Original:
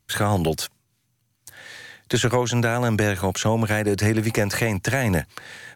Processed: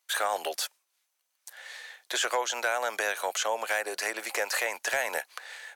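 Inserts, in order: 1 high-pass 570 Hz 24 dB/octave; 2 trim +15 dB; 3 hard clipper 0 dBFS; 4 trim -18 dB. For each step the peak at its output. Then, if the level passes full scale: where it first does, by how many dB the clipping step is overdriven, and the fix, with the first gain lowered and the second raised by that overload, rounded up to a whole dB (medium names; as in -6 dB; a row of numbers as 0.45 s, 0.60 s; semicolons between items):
-10.5 dBFS, +4.5 dBFS, 0.0 dBFS, -18.0 dBFS; step 2, 4.5 dB; step 2 +10 dB, step 4 -13 dB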